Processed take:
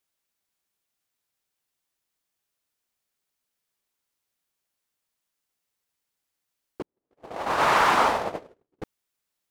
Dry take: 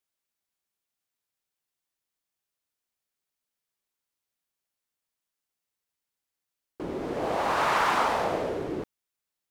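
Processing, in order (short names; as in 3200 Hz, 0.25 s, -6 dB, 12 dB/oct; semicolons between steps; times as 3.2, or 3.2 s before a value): 6.82–8.82 gate -25 dBFS, range -60 dB; gain +4.5 dB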